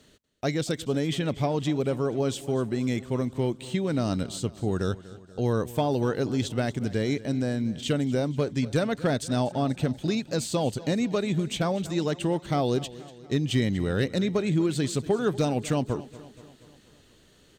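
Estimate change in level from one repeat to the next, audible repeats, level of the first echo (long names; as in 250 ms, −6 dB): −5.0 dB, 4, −18.0 dB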